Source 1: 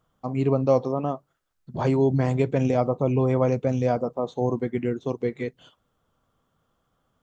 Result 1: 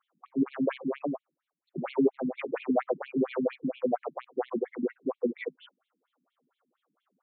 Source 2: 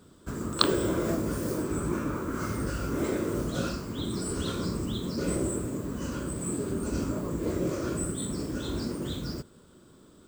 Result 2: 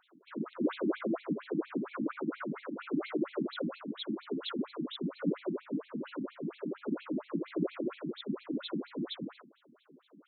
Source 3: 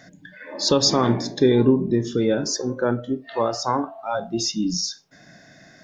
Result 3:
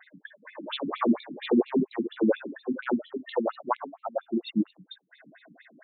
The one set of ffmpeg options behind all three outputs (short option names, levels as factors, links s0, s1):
-filter_complex "[0:a]aeval=exprs='clip(val(0),-1,0.15)':c=same,acrossover=split=130|3000[s0][s1][s2];[s0]acompressor=threshold=0.0562:ratio=10[s3];[s3][s1][s2]amix=inputs=3:normalize=0,afftfilt=real='re*between(b*sr/1024,220*pow(3100/220,0.5+0.5*sin(2*PI*4.3*pts/sr))/1.41,220*pow(3100/220,0.5+0.5*sin(2*PI*4.3*pts/sr))*1.41)':imag='im*between(b*sr/1024,220*pow(3100/220,0.5+0.5*sin(2*PI*4.3*pts/sr))/1.41,220*pow(3100/220,0.5+0.5*sin(2*PI*4.3*pts/sr))*1.41)':win_size=1024:overlap=0.75,volume=1.33"